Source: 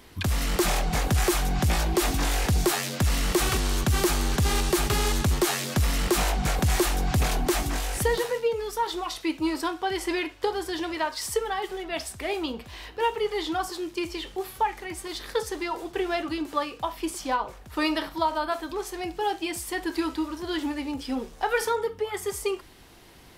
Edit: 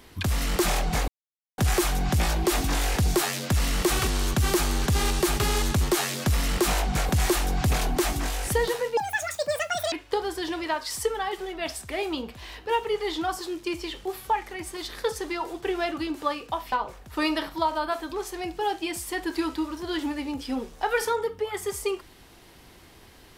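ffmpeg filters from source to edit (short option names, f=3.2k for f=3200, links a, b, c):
-filter_complex "[0:a]asplit=5[a][b][c][d][e];[a]atrim=end=1.08,asetpts=PTS-STARTPTS,afade=t=out:st=1.076:d=0.004:c=hsin,apad=pad_dur=0.5[f];[b]atrim=start=1.08:end=8.474,asetpts=PTS-STARTPTS,afade=t=in:d=0.004:c=hsin[g];[c]atrim=start=8.47:end=10.23,asetpts=PTS-STARTPTS,asetrate=81585,aresample=44100[h];[d]atrim=start=10.226:end=17.032[i];[e]atrim=start=17.318[j];[f][g]concat=n=2:v=0:a=1[k];[k][h]acrossfade=d=0.004:c1=hsin:c2=hsin[l];[l][i]acrossfade=d=0.004:c1=hsin:c2=hsin[m];[m][j]acrossfade=d=0.004:c1=hsin:c2=hsin"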